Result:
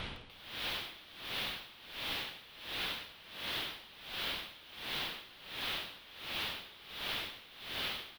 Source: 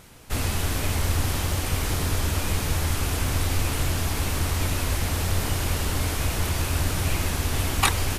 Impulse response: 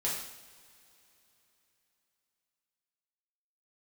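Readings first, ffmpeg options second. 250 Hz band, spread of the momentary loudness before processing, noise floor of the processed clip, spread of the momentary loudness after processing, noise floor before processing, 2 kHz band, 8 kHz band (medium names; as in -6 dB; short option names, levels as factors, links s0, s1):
-21.5 dB, 1 LU, -56 dBFS, 9 LU, -29 dBFS, -10.0 dB, -26.0 dB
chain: -filter_complex "[0:a]bandreject=f=50:t=h:w=6,bandreject=f=100:t=h:w=6,bandreject=f=150:t=h:w=6,bandreject=f=200:t=h:w=6,bandreject=f=250:t=h:w=6,bandreject=f=300:t=h:w=6,bandreject=f=350:t=h:w=6,bandreject=f=400:t=h:w=6,afftfilt=real='re*lt(hypot(re,im),0.158)':imag='im*lt(hypot(re,im),0.158)':win_size=1024:overlap=0.75,adynamicequalizer=threshold=0.00562:dfrequency=280:dqfactor=0.8:tfrequency=280:tqfactor=0.8:attack=5:release=100:ratio=0.375:range=2:mode=boostabove:tftype=bell,aresample=22050,aresample=44100,alimiter=limit=0.0668:level=0:latency=1:release=69,aeval=exprs='(mod(94.4*val(0)+1,2)-1)/94.4':c=same,highshelf=f=5000:t=q:w=3:g=-14,asplit=2[s0][s1];[s1]adelay=102,lowpass=f=820:p=1,volume=0.562,asplit=2[s2][s3];[s3]adelay=102,lowpass=f=820:p=1,volume=0.19,asplit=2[s4][s5];[s5]adelay=102,lowpass=f=820:p=1,volume=0.19[s6];[s0][s2][s4][s6]amix=inputs=4:normalize=0,aeval=exprs='val(0)*pow(10,-19*(0.5-0.5*cos(2*PI*1.4*n/s))/20)':c=same,volume=3.16"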